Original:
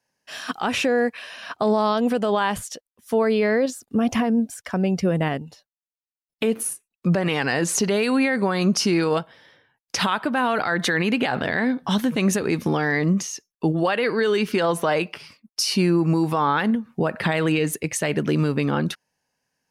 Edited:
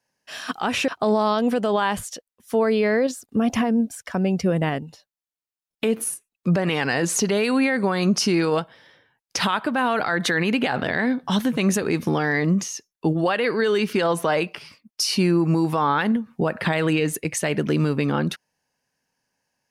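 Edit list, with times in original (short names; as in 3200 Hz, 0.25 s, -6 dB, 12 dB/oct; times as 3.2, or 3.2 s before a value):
0.88–1.47 cut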